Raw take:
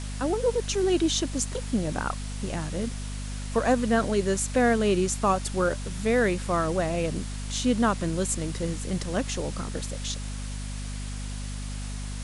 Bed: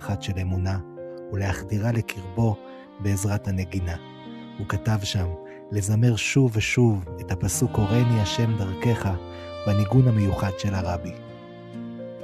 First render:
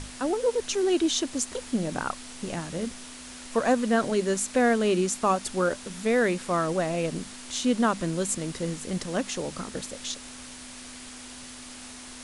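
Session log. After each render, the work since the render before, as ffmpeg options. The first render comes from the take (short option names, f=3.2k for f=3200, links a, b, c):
-af "bandreject=f=50:t=h:w=6,bandreject=f=100:t=h:w=6,bandreject=f=150:t=h:w=6,bandreject=f=200:t=h:w=6"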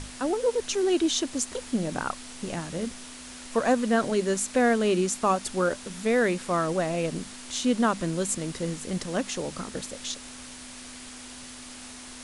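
-af anull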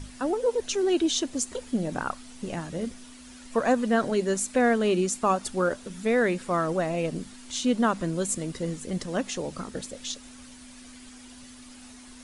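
-af "afftdn=nr=9:nf=-43"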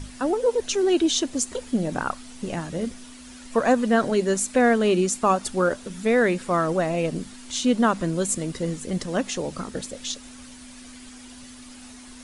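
-af "volume=3.5dB"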